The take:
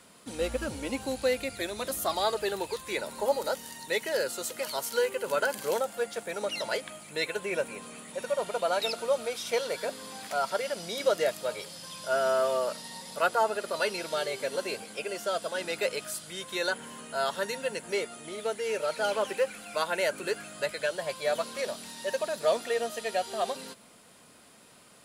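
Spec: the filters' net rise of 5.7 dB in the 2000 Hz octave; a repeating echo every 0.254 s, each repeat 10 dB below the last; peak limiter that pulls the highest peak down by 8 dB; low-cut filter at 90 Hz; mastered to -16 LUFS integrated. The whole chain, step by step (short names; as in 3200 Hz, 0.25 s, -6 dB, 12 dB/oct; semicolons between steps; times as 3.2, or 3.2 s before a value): HPF 90 Hz; bell 2000 Hz +7.5 dB; limiter -19.5 dBFS; feedback echo 0.254 s, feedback 32%, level -10 dB; gain +14.5 dB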